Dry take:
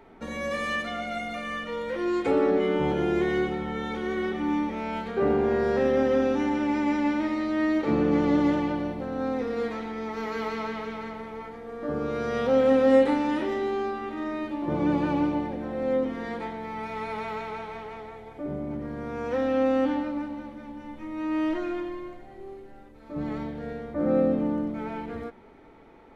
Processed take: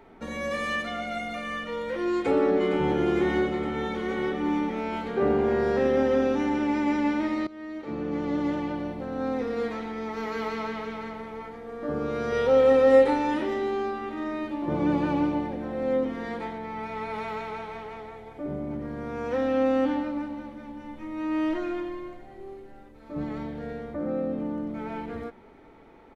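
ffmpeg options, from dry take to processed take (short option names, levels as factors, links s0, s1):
-filter_complex "[0:a]asplit=2[s0][s1];[s1]afade=t=in:st=2.14:d=0.01,afade=t=out:st=2.95:d=0.01,aecho=0:1:460|920|1380|1840|2300|2760|3220|3680|4140|4600|5060|5520:0.354813|0.283851|0.227081|0.181664|0.145332|0.116265|0.0930122|0.0744098|0.0595278|0.0476222|0.0380978|0.0304782[s2];[s0][s2]amix=inputs=2:normalize=0,asettb=1/sr,asplit=3[s3][s4][s5];[s3]atrim=end=12.324[s6];[s4]atrim=start=12.32:end=13.34,asetpts=PTS-STARTPTS,afade=t=in:d=0.004:c=qsin,afade=t=out:st=1.016:d=0.004:c=qsin,aecho=1:1:2.2:0.54,atrim=end_sample=44982[s7];[s5]atrim=start=13.336[s8];[s6][s7]acrossfade=d=0.004:c1=hsin:c2=qsin[s9];[s9][s8]acrossfade=d=0.004:c1=qsin:c2=hsin,asettb=1/sr,asplit=3[s10][s11][s12];[s10]atrim=end=16.584[s13];[s11]atrim=start=16.58:end=17.14,asetpts=PTS-STARTPTS,afade=t=in:d=0.004:c=qsin,afade=t=out:st=0.556:d=0.004:c=qsin,highshelf=f=4400:g=-5[s14];[s12]atrim=start=17.136[s15];[s13][s14]acrossfade=d=0.004:c1=hsin:c2=qsin[s16];[s16][s15]acrossfade=d=0.004:c1=qsin:c2=hsin,asettb=1/sr,asplit=3[s17][s18][s19];[s17]atrim=end=23.244[s20];[s18]atrim=start=23.24:end=24.91,asetpts=PTS-STARTPTS,afade=t=in:d=0.004:c=qsin,afade=t=out:st=1.666:d=0.004:c=qsin,acompressor=threshold=0.0316:ratio=2:attack=3.2:release=140:knee=1:detection=peak[s21];[s19]atrim=start=24.906[s22];[s20][s21]acrossfade=d=0.004:c1=hsin:c2=qsin[s23];[s23][s22]acrossfade=d=0.004:c1=qsin:c2=hsin,asplit=2[s24][s25];[s24]atrim=end=7.47,asetpts=PTS-STARTPTS,afade=t=out:st=7.466:d=0.004:c=hsin:silence=0.11885[s26];[s25]atrim=start=7.47,asetpts=PTS-STARTPTS,afade=t=in:d=1.86:silence=0.11885[s27];[s26][s27]concat=n=2:v=0:a=1"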